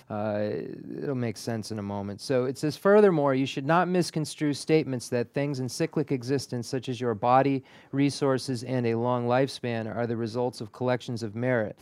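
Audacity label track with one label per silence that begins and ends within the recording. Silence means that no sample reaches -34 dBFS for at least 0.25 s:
7.590000	7.930000	silence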